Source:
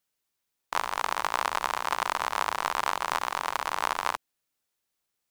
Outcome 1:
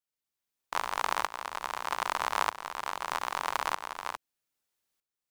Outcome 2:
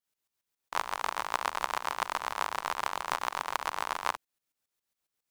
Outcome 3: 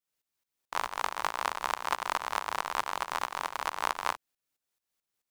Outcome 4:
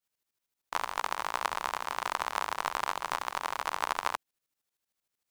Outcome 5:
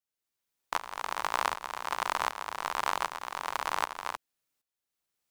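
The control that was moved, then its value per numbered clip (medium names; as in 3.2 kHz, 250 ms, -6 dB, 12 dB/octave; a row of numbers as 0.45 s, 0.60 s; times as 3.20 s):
tremolo, rate: 0.8 Hz, 7.3 Hz, 4.6 Hz, 13 Hz, 1.3 Hz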